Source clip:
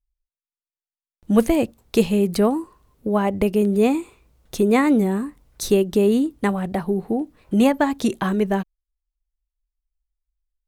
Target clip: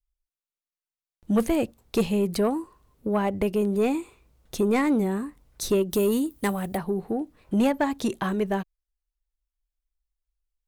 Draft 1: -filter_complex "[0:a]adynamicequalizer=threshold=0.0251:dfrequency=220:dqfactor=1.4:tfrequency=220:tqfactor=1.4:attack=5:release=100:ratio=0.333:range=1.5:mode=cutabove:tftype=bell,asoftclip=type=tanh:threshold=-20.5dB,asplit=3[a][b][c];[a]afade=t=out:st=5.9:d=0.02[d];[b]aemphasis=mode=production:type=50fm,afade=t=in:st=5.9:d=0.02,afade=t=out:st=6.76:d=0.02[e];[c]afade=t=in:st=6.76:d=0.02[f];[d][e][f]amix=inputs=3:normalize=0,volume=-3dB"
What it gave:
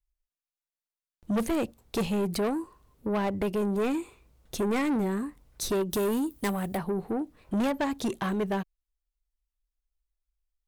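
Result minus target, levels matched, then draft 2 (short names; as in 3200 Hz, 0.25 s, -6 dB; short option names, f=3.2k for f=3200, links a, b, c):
soft clip: distortion +8 dB
-filter_complex "[0:a]adynamicequalizer=threshold=0.0251:dfrequency=220:dqfactor=1.4:tfrequency=220:tqfactor=1.4:attack=5:release=100:ratio=0.333:range=1.5:mode=cutabove:tftype=bell,asoftclip=type=tanh:threshold=-11.5dB,asplit=3[a][b][c];[a]afade=t=out:st=5.9:d=0.02[d];[b]aemphasis=mode=production:type=50fm,afade=t=in:st=5.9:d=0.02,afade=t=out:st=6.76:d=0.02[e];[c]afade=t=in:st=6.76:d=0.02[f];[d][e][f]amix=inputs=3:normalize=0,volume=-3dB"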